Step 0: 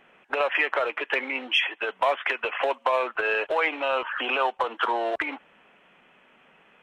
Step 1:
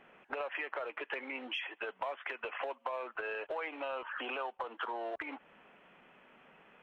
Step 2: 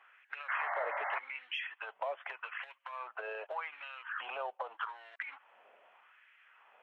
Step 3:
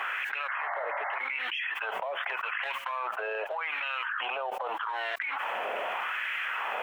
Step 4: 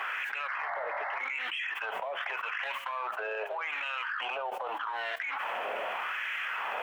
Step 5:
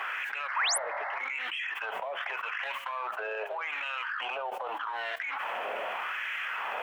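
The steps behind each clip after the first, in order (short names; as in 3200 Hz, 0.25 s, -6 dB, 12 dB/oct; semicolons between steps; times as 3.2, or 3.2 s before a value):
high shelf 3100 Hz -9 dB; compressor 3:1, threshold -38 dBFS, peak gain reduction 14 dB; gain -1.5 dB
painted sound noise, 0.48–1.19, 550–2200 Hz -36 dBFS; LFO high-pass sine 0.83 Hz 560–1900 Hz; gain -4.5 dB
fast leveller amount 100%
flange 0.69 Hz, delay 8.8 ms, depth 7.1 ms, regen +81%; in parallel at -7 dB: soft clip -31.5 dBFS, distortion -17 dB
painted sound rise, 0.56–0.78, 840–12000 Hz -28 dBFS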